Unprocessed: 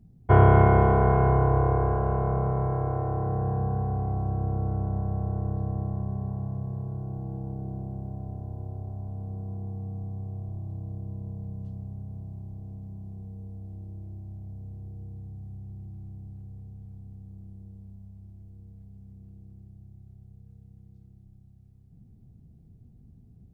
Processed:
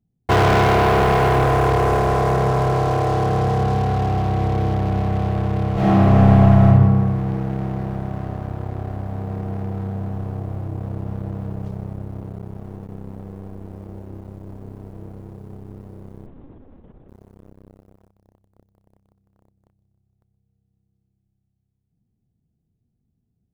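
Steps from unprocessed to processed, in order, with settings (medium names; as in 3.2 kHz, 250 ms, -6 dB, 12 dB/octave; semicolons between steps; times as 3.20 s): 12.22–12.89 s: gate with hold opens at -33 dBFS; bass shelf 160 Hz -8.5 dB; waveshaping leveller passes 5; 5.73–6.66 s: reverb throw, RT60 1.7 s, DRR -11 dB; 16.26–17.09 s: monotone LPC vocoder at 8 kHz 270 Hz; trim -4 dB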